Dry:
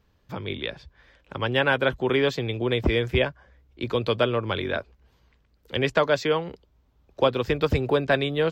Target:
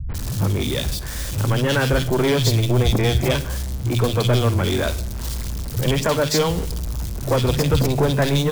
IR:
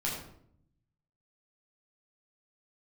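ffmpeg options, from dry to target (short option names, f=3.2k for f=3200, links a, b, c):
-filter_complex "[0:a]aeval=exprs='val(0)+0.5*0.0178*sgn(val(0))':c=same,bass=f=250:g=12,treble=f=4k:g=12,asoftclip=type=tanh:threshold=-18dB,acrossover=split=150|2300[a][b][c];[b]adelay=90[d];[c]adelay=140[e];[a][d][e]amix=inputs=3:normalize=0,asplit=2[f][g];[1:a]atrim=start_sample=2205,adelay=42[h];[g][h]afir=irnorm=-1:irlink=0,volume=-20.5dB[i];[f][i]amix=inputs=2:normalize=0,volume=5dB"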